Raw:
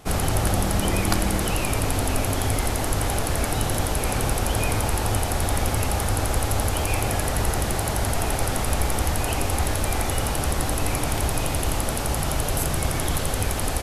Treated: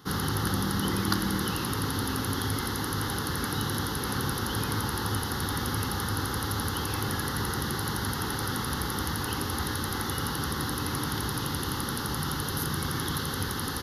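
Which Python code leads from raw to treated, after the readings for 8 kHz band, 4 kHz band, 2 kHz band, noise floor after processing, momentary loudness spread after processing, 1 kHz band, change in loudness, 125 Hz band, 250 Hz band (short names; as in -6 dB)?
-8.0 dB, -1.5 dB, -3.5 dB, -33 dBFS, 2 LU, -5.0 dB, -5.5 dB, -6.5 dB, -2.5 dB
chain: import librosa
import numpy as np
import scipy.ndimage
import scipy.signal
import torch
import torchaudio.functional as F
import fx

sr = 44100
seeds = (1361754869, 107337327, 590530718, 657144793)

y = scipy.signal.sosfilt(scipy.signal.butter(2, 130.0, 'highpass', fs=sr, output='sos'), x)
y = fx.fixed_phaser(y, sr, hz=2400.0, stages=6)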